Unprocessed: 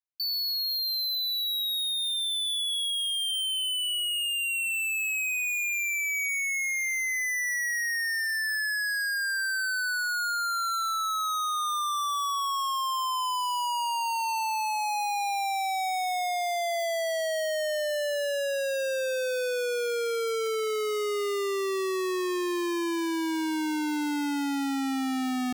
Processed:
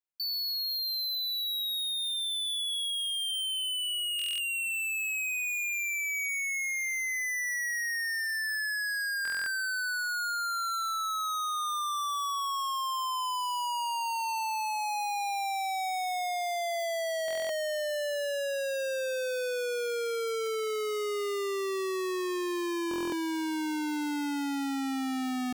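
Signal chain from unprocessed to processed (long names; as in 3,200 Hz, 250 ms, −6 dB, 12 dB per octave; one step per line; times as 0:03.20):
buffer that repeats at 0:04.17/0:09.23/0:17.26/0:22.89, samples 1,024, times 9
level −3 dB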